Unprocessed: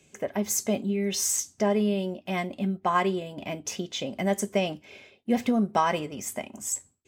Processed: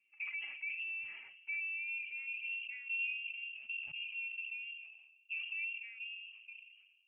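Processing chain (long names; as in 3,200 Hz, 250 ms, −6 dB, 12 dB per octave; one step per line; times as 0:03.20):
source passing by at 0:02.34, 28 m/s, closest 15 metres
high-pass filter 87 Hz 12 dB per octave
downward compressor 12 to 1, threshold −34 dBFS, peak gain reduction 14 dB
brickwall limiter −34 dBFS, peak gain reduction 11 dB
low-pass filter sweep 790 Hz → 370 Hz, 0:01.36–0:02.89
phase-vocoder pitch shift with formants kept +7.5 semitones
on a send at −22.5 dB: convolution reverb RT60 2.0 s, pre-delay 6 ms
on the sum: voice inversion scrambler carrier 3,000 Hz
level that may fall only so fast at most 47 dB per second
level −1.5 dB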